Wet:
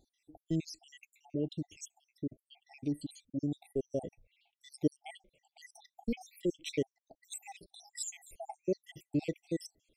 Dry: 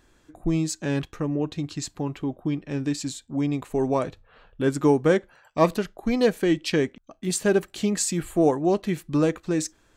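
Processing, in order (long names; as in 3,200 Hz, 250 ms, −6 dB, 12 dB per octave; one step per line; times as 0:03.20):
time-frequency cells dropped at random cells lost 74%
linear-phase brick-wall band-stop 870–1,900 Hz
level −7.5 dB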